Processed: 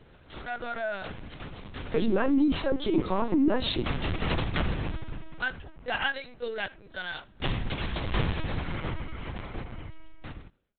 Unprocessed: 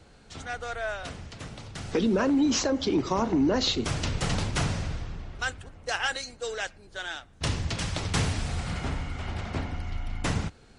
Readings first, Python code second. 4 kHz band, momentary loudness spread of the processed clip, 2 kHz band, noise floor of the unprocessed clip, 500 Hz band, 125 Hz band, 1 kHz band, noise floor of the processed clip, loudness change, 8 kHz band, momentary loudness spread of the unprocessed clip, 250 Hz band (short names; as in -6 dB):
-4.0 dB, 18 LU, 0.0 dB, -55 dBFS, -0.5 dB, -3.0 dB, -1.5 dB, -55 dBFS, -1.5 dB, under -40 dB, 14 LU, -1.0 dB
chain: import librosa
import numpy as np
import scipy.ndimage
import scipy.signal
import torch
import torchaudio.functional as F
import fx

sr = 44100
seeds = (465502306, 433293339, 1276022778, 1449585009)

y = fx.fade_out_tail(x, sr, length_s=2.24)
y = y + 10.0 ** (-23.5 / 20.0) * np.pad(y, (int(73 * sr / 1000.0), 0))[:len(y)]
y = fx.lpc_vocoder(y, sr, seeds[0], excitation='pitch_kept', order=10)